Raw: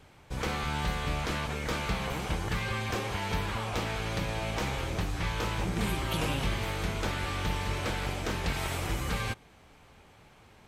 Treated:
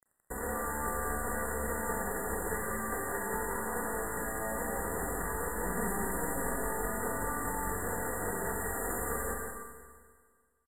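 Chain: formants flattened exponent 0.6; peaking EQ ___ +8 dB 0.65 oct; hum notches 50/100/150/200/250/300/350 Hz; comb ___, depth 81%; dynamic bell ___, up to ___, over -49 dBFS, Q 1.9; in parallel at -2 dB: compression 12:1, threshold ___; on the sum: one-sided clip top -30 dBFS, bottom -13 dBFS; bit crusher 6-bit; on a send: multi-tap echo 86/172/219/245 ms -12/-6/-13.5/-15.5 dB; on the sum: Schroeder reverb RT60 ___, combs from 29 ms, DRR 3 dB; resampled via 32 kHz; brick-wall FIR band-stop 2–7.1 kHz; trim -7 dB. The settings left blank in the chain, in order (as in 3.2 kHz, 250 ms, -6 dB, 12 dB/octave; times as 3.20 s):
370 Hz, 4.2 ms, 150 Hz, -3 dB, -35 dBFS, 1.8 s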